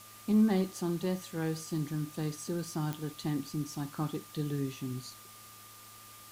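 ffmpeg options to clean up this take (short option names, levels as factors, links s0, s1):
-af "adeclick=t=4,bandreject=f=108.1:t=h:w=4,bandreject=f=216.2:t=h:w=4,bandreject=f=324.3:t=h:w=4,bandreject=f=1200:w=30,afwtdn=0.0025"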